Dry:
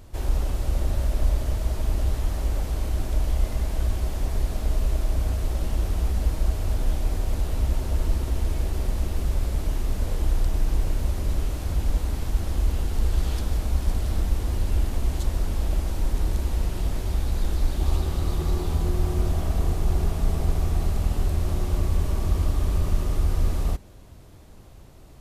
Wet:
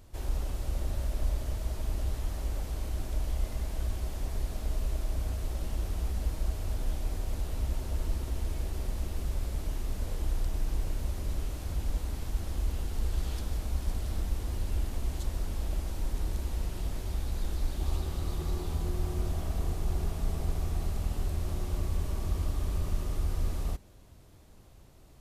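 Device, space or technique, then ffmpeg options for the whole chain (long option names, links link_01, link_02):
exciter from parts: -filter_complex "[0:a]asplit=2[link_01][link_02];[link_02]highpass=frequency=3300:poles=1,asoftclip=type=tanh:threshold=-37.5dB,volume=-8dB[link_03];[link_01][link_03]amix=inputs=2:normalize=0,volume=-8dB"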